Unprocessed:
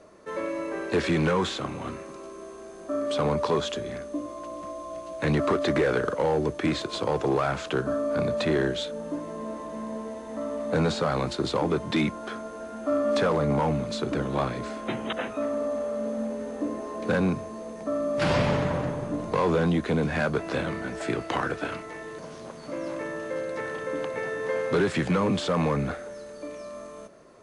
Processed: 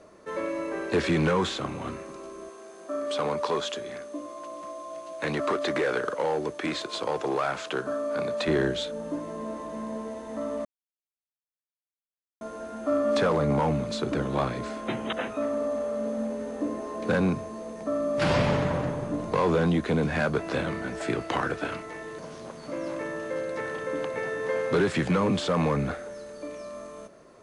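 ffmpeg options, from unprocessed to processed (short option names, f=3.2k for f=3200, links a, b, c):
-filter_complex "[0:a]asettb=1/sr,asplit=3[a][b][c];[a]atrim=end=2.494[d];[b]atrim=start=2.49:end=8.48,asetpts=PTS-STARTPTS,afade=t=in:d=0.004:c=qsin,afade=t=out:st=5.986:d=0.004:c=qsin,highpass=f=460:p=1[e];[c]atrim=start=8.476[f];[d][e]acrossfade=d=0.004:c1=hsin:c2=qsin[g];[g][f]acrossfade=d=0.004:c1=qsin:c2=hsin,asplit=3[h][i][j];[h]atrim=end=10.65,asetpts=PTS-STARTPTS,afade=t=out:st=10.646:d=0.004:c=hsin[k];[i]atrim=start=10.65:end=12.41,asetpts=PTS-STARTPTS,volume=0[l];[j]atrim=start=12.41,asetpts=PTS-STARTPTS,afade=t=in:d=0.004:c=hsin[m];[k][l][m]concat=n=3:v=0:a=1"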